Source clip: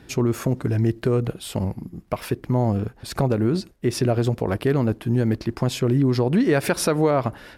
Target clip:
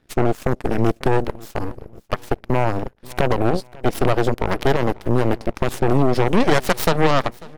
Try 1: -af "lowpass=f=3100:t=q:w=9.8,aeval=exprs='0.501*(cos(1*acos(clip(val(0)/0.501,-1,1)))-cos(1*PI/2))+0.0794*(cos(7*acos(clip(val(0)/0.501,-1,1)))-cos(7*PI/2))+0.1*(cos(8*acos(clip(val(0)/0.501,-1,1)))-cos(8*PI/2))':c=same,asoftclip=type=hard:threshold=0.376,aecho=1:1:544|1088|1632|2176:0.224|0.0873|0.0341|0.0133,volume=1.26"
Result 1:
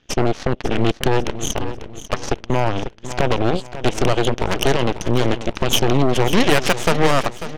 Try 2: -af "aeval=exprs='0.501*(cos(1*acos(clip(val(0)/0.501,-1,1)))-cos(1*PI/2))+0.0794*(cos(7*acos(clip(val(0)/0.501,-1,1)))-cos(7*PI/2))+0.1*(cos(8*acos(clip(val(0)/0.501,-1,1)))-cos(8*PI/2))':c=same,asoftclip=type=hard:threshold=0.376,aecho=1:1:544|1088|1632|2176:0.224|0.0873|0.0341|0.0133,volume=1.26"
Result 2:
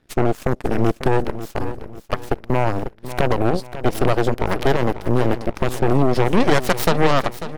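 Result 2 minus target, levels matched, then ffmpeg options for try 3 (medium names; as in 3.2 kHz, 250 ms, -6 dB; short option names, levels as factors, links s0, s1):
echo-to-direct +9.5 dB
-af "aeval=exprs='0.501*(cos(1*acos(clip(val(0)/0.501,-1,1)))-cos(1*PI/2))+0.0794*(cos(7*acos(clip(val(0)/0.501,-1,1)))-cos(7*PI/2))+0.1*(cos(8*acos(clip(val(0)/0.501,-1,1)))-cos(8*PI/2))':c=same,asoftclip=type=hard:threshold=0.376,aecho=1:1:544|1088|1632:0.075|0.0292|0.0114,volume=1.26"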